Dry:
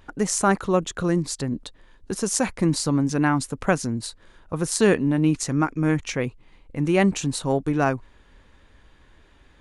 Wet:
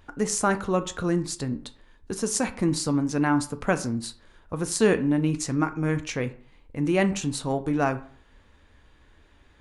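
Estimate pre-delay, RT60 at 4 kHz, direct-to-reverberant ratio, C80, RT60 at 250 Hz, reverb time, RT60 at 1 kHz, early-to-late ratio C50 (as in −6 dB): 5 ms, 0.30 s, 9.0 dB, 19.5 dB, 0.45 s, 0.50 s, 0.50 s, 16.0 dB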